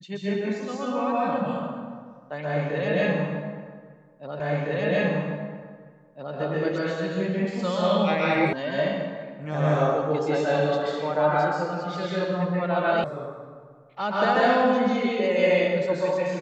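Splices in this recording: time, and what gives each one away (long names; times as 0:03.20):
0:04.40: the same again, the last 1.96 s
0:08.53: cut off before it has died away
0:13.04: cut off before it has died away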